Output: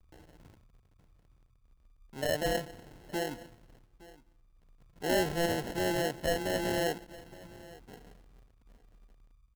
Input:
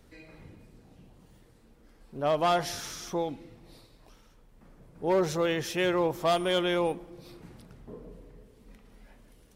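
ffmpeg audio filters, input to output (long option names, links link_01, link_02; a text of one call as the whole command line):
ffmpeg -i in.wav -filter_complex "[0:a]tremolo=f=0.56:d=0.29,acrossover=split=110[link_01][link_02];[link_01]alimiter=level_in=27dB:limit=-24dB:level=0:latency=1,volume=-27dB[link_03];[link_02]aeval=exprs='sgn(val(0))*max(abs(val(0))-0.0015,0)':channel_layout=same[link_04];[link_03][link_04]amix=inputs=2:normalize=0,asettb=1/sr,asplit=3[link_05][link_06][link_07];[link_05]atrim=end=2.264[link_08];[link_06]atrim=start=2.26:end=3.32,asetpts=PTS-STARTPTS,afade=type=in:duration=0.004:curve=qsin,afade=type=out:start_time=1.056:duration=0.004:curve=qsin,lowpass=1300[link_09];[link_07]atrim=start=3.316[link_10];[link_08][link_09]acrossfade=duration=0.004:curve1=hsin:curve2=qsin[link_11];[link_11][link_10]acrossfade=duration=0.004:curve1=qsin:curve2=hsin,acrusher=samples=37:mix=1:aa=0.000001,asoftclip=type=tanh:threshold=-17dB,asplit=2[link_12][link_13];[link_13]aecho=0:1:866:0.0944[link_14];[link_12][link_14]amix=inputs=2:normalize=0,volume=-1.5dB" out.wav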